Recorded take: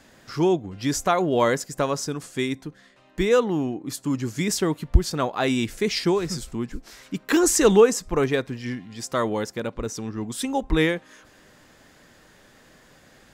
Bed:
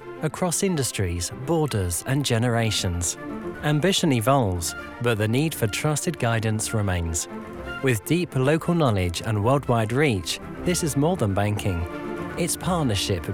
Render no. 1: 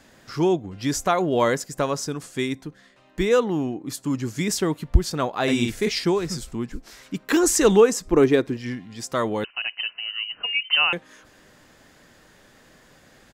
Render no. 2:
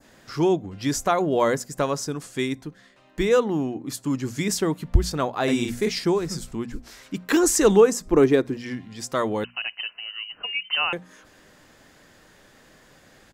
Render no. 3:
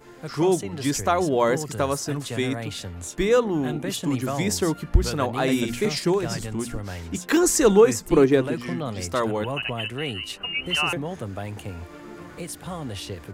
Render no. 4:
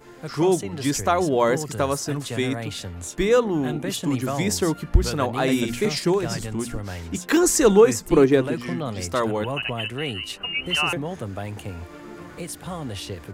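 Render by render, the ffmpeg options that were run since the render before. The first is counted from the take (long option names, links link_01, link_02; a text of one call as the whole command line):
ffmpeg -i in.wav -filter_complex "[0:a]asplit=3[link_01][link_02][link_03];[link_01]afade=type=out:start_time=5.47:duration=0.02[link_04];[link_02]asplit=2[link_05][link_06];[link_06]adelay=50,volume=-2.5dB[link_07];[link_05][link_07]amix=inputs=2:normalize=0,afade=type=in:start_time=5.47:duration=0.02,afade=type=out:start_time=5.88:duration=0.02[link_08];[link_03]afade=type=in:start_time=5.88:duration=0.02[link_09];[link_04][link_08][link_09]amix=inputs=3:normalize=0,asettb=1/sr,asplit=3[link_10][link_11][link_12];[link_10]atrim=end=8.054[link_13];[link_11]atrim=start=8.05:end=8.57,asetpts=PTS-STARTPTS,afade=type=in:duration=0.004:curve=qsin,afade=type=out:start_time=0.516:duration=0.004:curve=qsin,equalizer=frequency=330:width_type=o:width=0.77:gain=10.5[link_14];[link_12]atrim=start=8.566[link_15];[link_13][link_14]acrossfade=duration=0.004:curve1=hsin:curve2=qsin[link_16];[link_16][link_15]acrossfade=duration=0.004:curve1=qsin:curve2=hsin,asettb=1/sr,asplit=3[link_17][link_18][link_19];[link_17]atrim=end=9.444[link_20];[link_18]atrim=start=9.44:end=10.93,asetpts=PTS-STARTPTS,afade=type=in:duration=0.004:curve=qsin,afade=type=out:start_time=1.486:duration=0.004:curve=qsin,lowpass=frequency=2600:width_type=q:width=0.5098,lowpass=frequency=2600:width_type=q:width=0.6013,lowpass=frequency=2600:width_type=q:width=0.9,lowpass=frequency=2600:width_type=q:width=2.563,afreqshift=-3100[link_21];[link_19]atrim=start=10.926[link_22];[link_20][link_21]acrossfade=duration=0.004:curve1=hsin:curve2=qsin[link_23];[link_23][link_22]acrossfade=duration=0.004:curve1=qsin:curve2=hsin" out.wav
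ffmpeg -i in.wav -af "bandreject=frequency=60:width_type=h:width=6,bandreject=frequency=120:width_type=h:width=6,bandreject=frequency=180:width_type=h:width=6,bandreject=frequency=240:width_type=h:width=6,adynamicequalizer=threshold=0.0112:dfrequency=3000:dqfactor=0.81:tfrequency=3000:tqfactor=0.81:attack=5:release=100:ratio=0.375:range=3:mode=cutabove:tftype=bell" out.wav
ffmpeg -i in.wav -i bed.wav -filter_complex "[1:a]volume=-10dB[link_01];[0:a][link_01]amix=inputs=2:normalize=0" out.wav
ffmpeg -i in.wav -af "volume=1dB" out.wav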